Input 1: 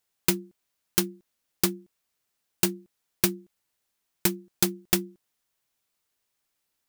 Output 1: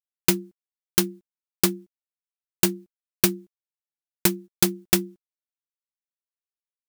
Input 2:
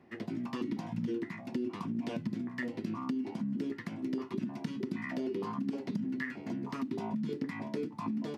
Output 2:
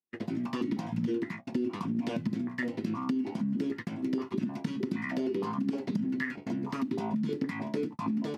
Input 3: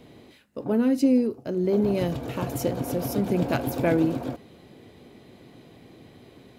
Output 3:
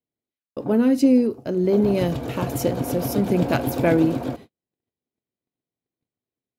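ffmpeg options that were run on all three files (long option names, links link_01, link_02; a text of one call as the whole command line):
ffmpeg -i in.wav -af "agate=range=-47dB:threshold=-42dB:ratio=16:detection=peak,volume=4dB" out.wav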